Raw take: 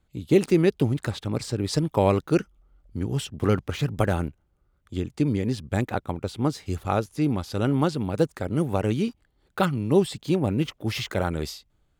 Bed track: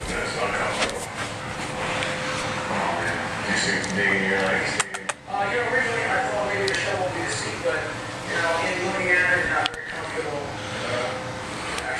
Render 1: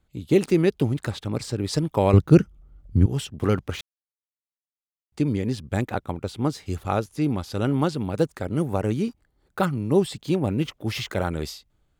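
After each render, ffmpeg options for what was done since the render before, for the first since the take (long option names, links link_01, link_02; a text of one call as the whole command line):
ffmpeg -i in.wav -filter_complex "[0:a]asettb=1/sr,asplit=3[link_01][link_02][link_03];[link_01]atrim=end=2.134[link_04];[link_02]atrim=start=2.13:end=3.06,asetpts=PTS-STARTPTS,afade=type=in:duration=0.004:curve=qsin,afade=type=out:start_time=0.926:duration=0.004:curve=qsin,equalizer=frequency=98:width=0.44:gain=14.5[link_05];[link_03]atrim=start=3.056[link_06];[link_04][link_05]acrossfade=duration=0.004:curve1=hsin:curve2=qsin[link_07];[link_07][link_06]acrossfade=duration=0.004:curve1=qsin:curve2=hsin,asettb=1/sr,asplit=3[link_08][link_09][link_10];[link_08]atrim=end=8.634[link_11];[link_09]atrim=start=8.63:end=10.03,asetpts=PTS-STARTPTS,afade=type=in:duration=0.004:curve=qsin,afade=type=out:start_time=1.396:duration=0.004:curve=qsin,equalizer=frequency=3100:width=1.5:gain=-5.5[link_12];[link_10]atrim=start=10.026[link_13];[link_11][link_12]acrossfade=duration=0.004:curve1=hsin:curve2=qsin[link_14];[link_14][link_13]acrossfade=duration=0.004:curve1=qsin:curve2=hsin,asplit=3[link_15][link_16][link_17];[link_15]atrim=end=3.81,asetpts=PTS-STARTPTS,afade=type=out:start_time=3.806:duration=0.004:curve=hsin[link_18];[link_16]atrim=start=3.81:end=5.12,asetpts=PTS-STARTPTS,volume=0[link_19];[link_17]atrim=start=5.12,asetpts=PTS-STARTPTS,afade=type=in:duration=0.004:curve=hsin[link_20];[link_18][link_19][link_20]concat=n=3:v=0:a=1" out.wav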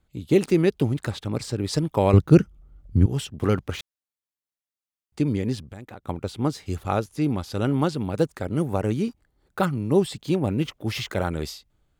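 ffmpeg -i in.wav -filter_complex "[0:a]asettb=1/sr,asplit=3[link_01][link_02][link_03];[link_01]atrim=end=5.624[link_04];[link_02]atrim=start=5.62:end=6.05,asetpts=PTS-STARTPTS,afade=type=in:duration=0.004:curve=qsin,afade=type=out:start_time=0.426:duration=0.004:curve=qsin,acompressor=threshold=-38dB:ratio=5:attack=3.2:release=140:knee=1:detection=peak[link_05];[link_03]atrim=start=6.046[link_06];[link_04][link_05]acrossfade=duration=0.004:curve1=hsin:curve2=qsin[link_07];[link_07][link_06]acrossfade=duration=0.004:curve1=qsin:curve2=hsin" out.wav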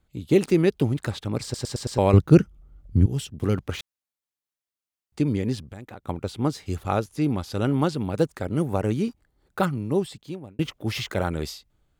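ffmpeg -i in.wav -filter_complex "[0:a]asettb=1/sr,asplit=3[link_01][link_02][link_03];[link_01]atrim=end=3.014[link_04];[link_02]atrim=start=3.01:end=3.57,asetpts=PTS-STARTPTS,afade=type=in:duration=0.004:curve=qsin,afade=type=out:start_time=0.556:duration=0.004:curve=qsin,equalizer=frequency=1100:width_type=o:width=2.6:gain=-7[link_05];[link_03]atrim=start=3.566[link_06];[link_04][link_05]acrossfade=duration=0.004:curve1=hsin:curve2=qsin[link_07];[link_07][link_06]acrossfade=duration=0.004:curve1=qsin:curve2=hsin,asplit=7[link_08][link_09][link_10][link_11][link_12][link_13][link_14];[link_08]atrim=end=1.542[link_15];[link_09]atrim=start=1.428:end=1.542[link_16];[link_10]atrim=start=1.428:end=1.542[link_17];[link_11]atrim=start=1.428:end=1.542[link_18];[link_12]atrim=start=1.428:end=1.542[link_19];[link_13]atrim=start=1.978:end=10.59,asetpts=PTS-STARTPTS,afade=type=out:start_time=7.622:duration=0.99[link_20];[link_14]atrim=start=10.59,asetpts=PTS-STARTPTS,afade=type=in:duration=0.004:curve=hsin[link_21];[link_15][link_16]acrossfade=duration=0.004:curve1=hsin:curve2=hsin[link_22];[link_22][link_17]acrossfade=duration=0.004:curve1=hsin:curve2=hsin[link_23];[link_23][link_18]acrossfade=duration=0.004:curve1=hsin:curve2=hsin[link_24];[link_24][link_19]acrossfade=duration=0.004:curve1=hsin:curve2=hsin[link_25];[link_20][link_21]concat=n=2:v=0:a=1[link_26];[link_25][link_26]acrossfade=duration=0.004:curve1=hsin:curve2=hsin" out.wav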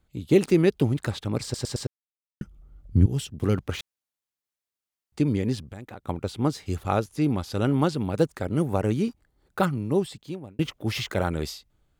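ffmpeg -i in.wav -filter_complex "[0:a]asplit=3[link_01][link_02][link_03];[link_01]atrim=end=1.87,asetpts=PTS-STARTPTS,afade=type=out:start_time=1.866:duration=0.004:curve=hsin[link_04];[link_02]atrim=start=1.87:end=2.41,asetpts=PTS-STARTPTS,volume=0[link_05];[link_03]atrim=start=2.41,asetpts=PTS-STARTPTS,afade=type=in:duration=0.004:curve=hsin[link_06];[link_04][link_05][link_06]concat=n=3:v=0:a=1" out.wav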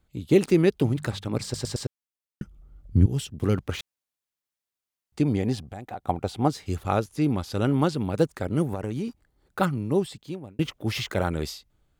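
ffmpeg -i in.wav -filter_complex "[0:a]asettb=1/sr,asplit=3[link_01][link_02][link_03];[link_01]atrim=end=0.794[link_04];[link_02]atrim=start=0.79:end=1.74,asetpts=PTS-STARTPTS,afade=type=in:duration=0.004:curve=qsin,afade=type=out:start_time=0.946:duration=0.004:curve=qsin,bandreject=frequency=50:width_type=h:width=6,bandreject=frequency=100:width_type=h:width=6,bandreject=frequency=150:width_type=h:width=6,bandreject=frequency=200:width_type=h:width=6[link_05];[link_03]atrim=start=1.736[link_06];[link_04][link_05]acrossfade=duration=0.004:curve1=hsin:curve2=qsin[link_07];[link_07][link_06]acrossfade=duration=0.004:curve1=qsin:curve2=hsin,asettb=1/sr,asplit=3[link_08][link_09][link_10];[link_08]atrim=end=5.234[link_11];[link_09]atrim=start=5.23:end=6.48,asetpts=PTS-STARTPTS,afade=type=in:duration=0.004:curve=qsin,afade=type=out:start_time=1.246:duration=0.004:curve=qsin,equalizer=frequency=740:width_type=o:width=0.37:gain=12.5[link_12];[link_10]atrim=start=6.476[link_13];[link_11][link_12]acrossfade=duration=0.004:curve1=hsin:curve2=qsin[link_14];[link_14][link_13]acrossfade=duration=0.004:curve1=qsin:curve2=hsin,asettb=1/sr,asplit=3[link_15][link_16][link_17];[link_15]atrim=end=8.714[link_18];[link_16]atrim=start=8.71:end=9.61,asetpts=PTS-STARTPTS,afade=type=in:duration=0.004:curve=qsin,afade=type=out:start_time=0.896:duration=0.004:curve=qsin,acompressor=threshold=-25dB:ratio=10:attack=3.2:release=140:knee=1:detection=peak[link_19];[link_17]atrim=start=9.606[link_20];[link_18][link_19]acrossfade=duration=0.004:curve1=hsin:curve2=qsin[link_21];[link_21][link_20]acrossfade=duration=0.004:curve1=qsin:curve2=hsin" out.wav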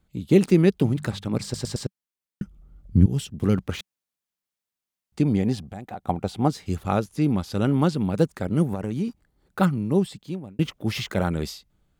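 ffmpeg -i in.wav -af "equalizer=frequency=190:width_type=o:width=0.54:gain=7" out.wav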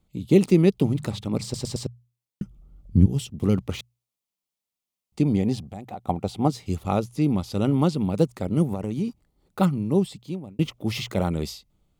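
ffmpeg -i in.wav -af "equalizer=frequency=1600:width=3.9:gain=-12,bandreject=frequency=60:width_type=h:width=6,bandreject=frequency=120:width_type=h:width=6" out.wav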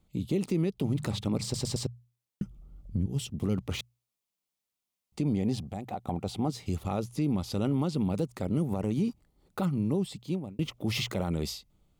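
ffmpeg -i in.wav -af "acompressor=threshold=-22dB:ratio=5,alimiter=limit=-20dB:level=0:latency=1:release=22" out.wav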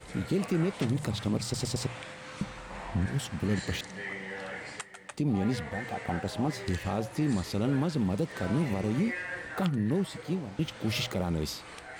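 ffmpeg -i in.wav -i bed.wav -filter_complex "[1:a]volume=-17dB[link_01];[0:a][link_01]amix=inputs=2:normalize=0" out.wav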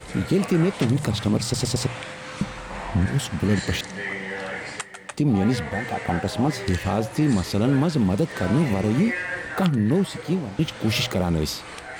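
ffmpeg -i in.wav -af "volume=8dB" out.wav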